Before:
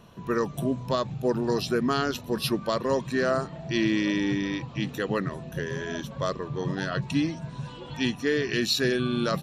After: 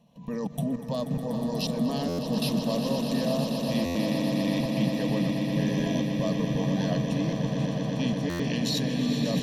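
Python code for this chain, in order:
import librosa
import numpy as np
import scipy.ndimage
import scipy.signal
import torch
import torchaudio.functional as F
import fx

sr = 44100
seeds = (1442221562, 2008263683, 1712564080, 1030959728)

y = scipy.signal.sosfilt(scipy.signal.butter(2, 100.0, 'highpass', fs=sr, output='sos'), x)
y = fx.high_shelf(y, sr, hz=3900.0, db=-3.5)
y = fx.echo_thinned(y, sr, ms=417, feedback_pct=60, hz=260.0, wet_db=-13)
y = fx.level_steps(y, sr, step_db=17)
y = fx.low_shelf(y, sr, hz=150.0, db=11.5)
y = fx.fixed_phaser(y, sr, hz=370.0, stages=6)
y = fx.echo_swell(y, sr, ms=121, loudest=8, wet_db=-10.5)
y = fx.buffer_glitch(y, sr, at_s=(2.08, 3.85, 8.29), block=512, repeats=8)
y = y * 10.0 ** (5.5 / 20.0)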